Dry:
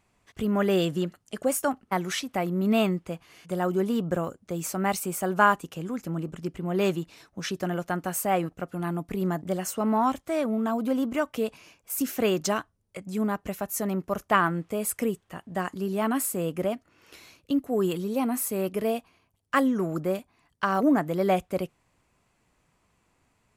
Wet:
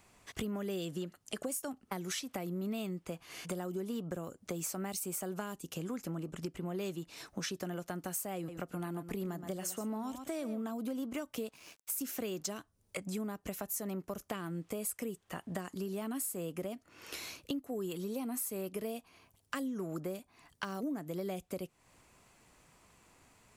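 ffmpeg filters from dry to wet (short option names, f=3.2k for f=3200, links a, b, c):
-filter_complex "[0:a]asettb=1/sr,asplit=3[a][b][c];[a]atrim=end=8.364[d];[b]atrim=start=8.36:end=10.62,asetpts=PTS-STARTPTS,afade=t=in:d=0.004:c=qsin,afade=t=out:st=2.256:d=0.004:c=qsin,aecho=1:1:119:0.224,atrim=end_sample=99666[e];[c]atrim=start=10.616[f];[d][e]acrossfade=d=0.004:c1=hsin:c2=qsin[g];[g][f]acrossfade=d=0.004:c1=qsin:c2=hsin,asettb=1/sr,asplit=3[h][i][j];[h]atrim=end=11.344[k];[i]atrim=start=11.34:end=12.45,asetpts=PTS-STARTPTS,afade=t=in:d=0.004:c=qsin,afade=t=out:st=1.106:d=0.004:c=qsin,aeval=exprs='sgn(val(0))*max(abs(val(0))-0.00133,0)':c=same[l];[j]atrim=start=12.446[m];[k][l]acrossfade=d=0.004:c1=hsin:c2=qsin[n];[n][m]acrossfade=d=0.004:c1=qsin:c2=hsin,acrossover=split=440|3000[o][p][q];[p]acompressor=threshold=-35dB:ratio=6[r];[o][r][q]amix=inputs=3:normalize=0,bass=f=250:g=-3,treble=f=4k:g=4,acompressor=threshold=-43dB:ratio=5,volume=5.5dB"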